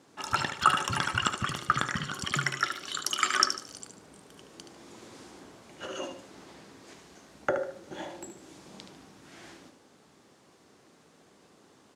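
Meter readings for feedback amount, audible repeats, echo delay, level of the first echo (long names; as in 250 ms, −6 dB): 33%, 3, 74 ms, −8.5 dB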